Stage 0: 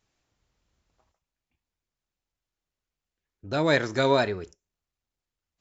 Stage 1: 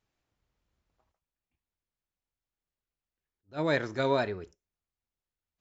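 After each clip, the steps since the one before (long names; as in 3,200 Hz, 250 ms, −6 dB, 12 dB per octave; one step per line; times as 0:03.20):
high-shelf EQ 5,800 Hz −10.5 dB
level that may rise only so fast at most 330 dB per second
level −5 dB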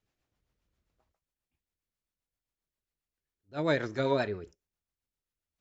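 rotating-speaker cabinet horn 7.5 Hz
level +1.5 dB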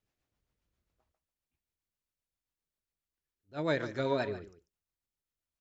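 single-tap delay 144 ms −14.5 dB
level −3 dB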